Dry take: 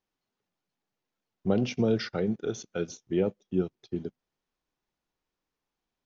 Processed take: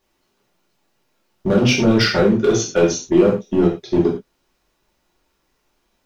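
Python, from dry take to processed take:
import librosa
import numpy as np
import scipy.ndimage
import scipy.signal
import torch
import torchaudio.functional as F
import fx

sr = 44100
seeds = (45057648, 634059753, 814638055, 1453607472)

p1 = fx.over_compress(x, sr, threshold_db=-30.0, ratio=-0.5)
p2 = x + (p1 * librosa.db_to_amplitude(0.0))
p3 = np.clip(p2, -10.0 ** (-18.5 / 20.0), 10.0 ** (-18.5 / 20.0))
p4 = fx.rev_gated(p3, sr, seeds[0], gate_ms=140, shape='falling', drr_db=-4.5)
y = p4 * librosa.db_to_amplitude(5.0)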